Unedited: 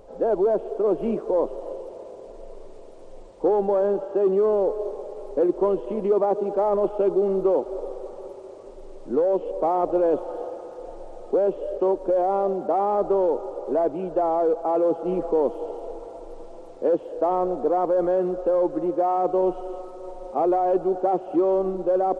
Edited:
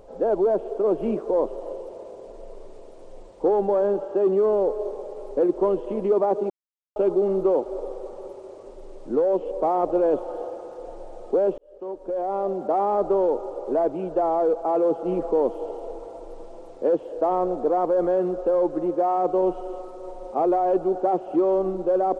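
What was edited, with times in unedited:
6.5–6.96 mute
11.58–12.74 fade in

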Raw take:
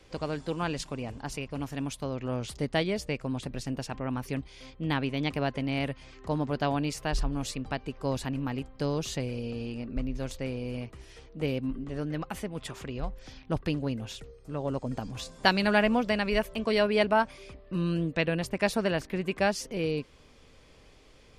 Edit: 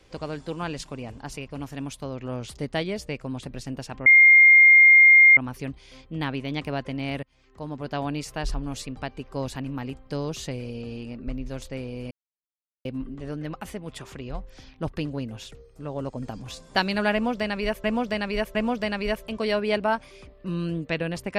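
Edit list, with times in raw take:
4.06 add tone 2120 Hz -9.5 dBFS 1.31 s
5.92–6.79 fade in, from -23.5 dB
10.8–11.54 mute
15.82–16.53 loop, 3 plays

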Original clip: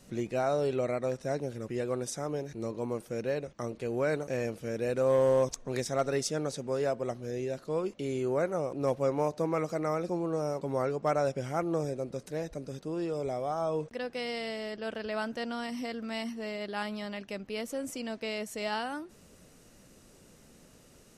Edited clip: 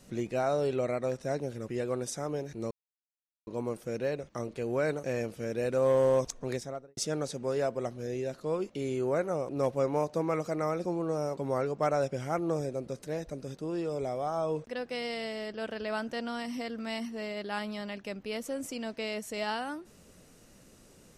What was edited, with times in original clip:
2.71 insert silence 0.76 s
5.65–6.21 studio fade out

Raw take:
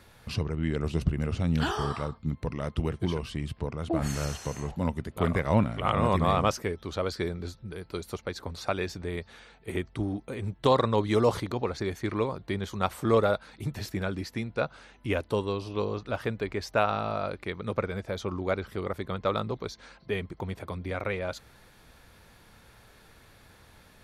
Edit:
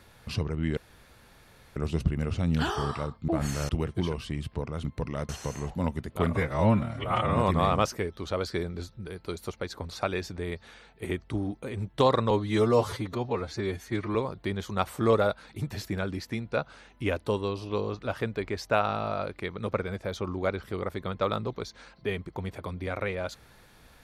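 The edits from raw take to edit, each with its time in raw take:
0.77 insert room tone 0.99 s
2.29–2.74 swap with 3.89–4.3
5.31–6.02 stretch 1.5×
10.96–12.19 stretch 1.5×

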